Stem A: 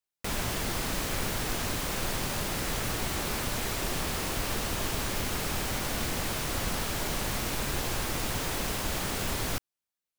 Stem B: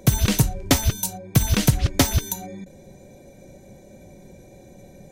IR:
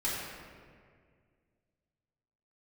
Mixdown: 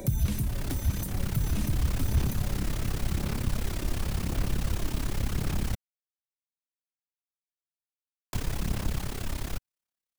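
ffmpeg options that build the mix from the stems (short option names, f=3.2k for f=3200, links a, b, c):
-filter_complex "[0:a]dynaudnorm=f=310:g=9:m=11.5dB,tremolo=f=34:d=0.857,volume=0dB,asplit=3[a][b][c];[a]atrim=end=5.75,asetpts=PTS-STARTPTS,afade=t=out:st=5.746:d=0.004:c=hsin[d];[b]atrim=start=5.75:end=8.33,asetpts=PTS-STARTPTS,volume=0[e];[c]atrim=start=8.33,asetpts=PTS-STARTPTS,afade=t=in:d=0.004:c=hsin[f];[d][e][f]concat=n=3:v=0:a=1[g];[1:a]acompressor=threshold=-34dB:ratio=2,aexciter=amount=2.4:drive=7.3:freq=8.6k,volume=3dB,asplit=2[h][i];[i]volume=-12.5dB[j];[2:a]atrim=start_sample=2205[k];[j][k]afir=irnorm=-1:irlink=0[l];[g][h][l]amix=inputs=3:normalize=0,asoftclip=type=tanh:threshold=-17.5dB,acrossover=split=240[m][n];[n]acompressor=threshold=-38dB:ratio=8[o];[m][o]amix=inputs=2:normalize=0,aphaser=in_gain=1:out_gain=1:delay=3.3:decay=0.26:speed=0.91:type=sinusoidal"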